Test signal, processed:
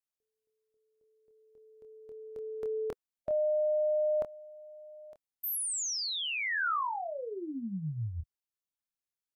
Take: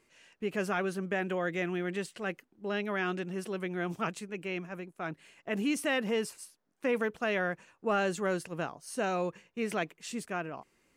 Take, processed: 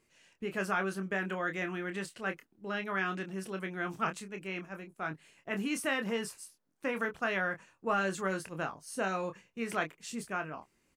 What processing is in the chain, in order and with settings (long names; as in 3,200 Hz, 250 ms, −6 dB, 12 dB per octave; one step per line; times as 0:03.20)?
dynamic equaliser 1,300 Hz, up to +7 dB, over −47 dBFS, Q 1
harmonic and percussive parts rebalanced harmonic −3 dB
bass and treble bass +5 dB, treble +3 dB
double-tracking delay 26 ms −7 dB
level −4 dB